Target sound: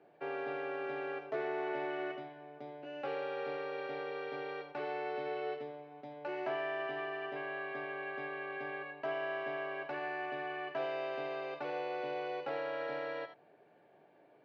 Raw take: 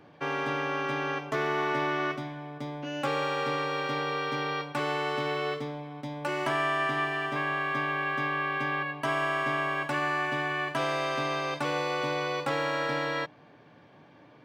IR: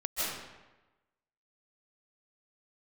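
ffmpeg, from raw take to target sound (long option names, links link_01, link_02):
-filter_complex "[0:a]highpass=230,equalizer=frequency=260:width_type=q:width=4:gain=-6,equalizer=frequency=400:width_type=q:width=4:gain=8,equalizer=frequency=680:width_type=q:width=4:gain=8,equalizer=frequency=1100:width_type=q:width=4:gain=-8,equalizer=frequency=2000:width_type=q:width=4:gain=-3,equalizer=frequency=3300:width_type=q:width=4:gain=-8,lowpass=frequency=3800:width=0.5412,lowpass=frequency=3800:width=1.3066[link_01];[1:a]atrim=start_sample=2205,afade=type=out:start_time=0.18:duration=0.01,atrim=end_sample=8379,asetrate=70560,aresample=44100[link_02];[link_01][link_02]afir=irnorm=-1:irlink=0,volume=-4dB"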